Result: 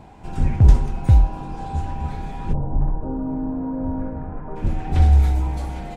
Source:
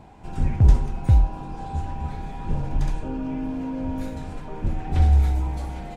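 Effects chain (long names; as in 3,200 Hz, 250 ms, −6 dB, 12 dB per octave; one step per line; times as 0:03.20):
0:02.52–0:04.55: low-pass filter 1,000 Hz → 1,600 Hz 24 dB per octave
level +3 dB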